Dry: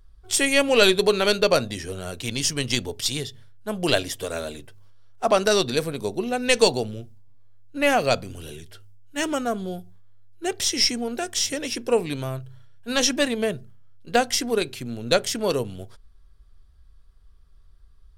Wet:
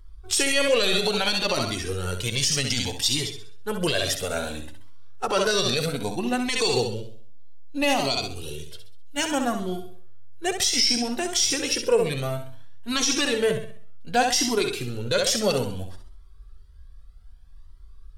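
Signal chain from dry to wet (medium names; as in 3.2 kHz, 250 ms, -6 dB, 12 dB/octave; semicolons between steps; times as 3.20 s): 6.79–9.17 s: fifteen-band graphic EQ 100 Hz -6 dB, 1.6 kHz -11 dB, 4 kHz +4 dB; flutter echo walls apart 11.2 m, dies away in 0.51 s; dynamic bell 4.8 kHz, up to +4 dB, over -33 dBFS, Q 1; band-stop 630 Hz, Q 12; loudness maximiser +13 dB; Shepard-style flanger rising 0.62 Hz; trim -6.5 dB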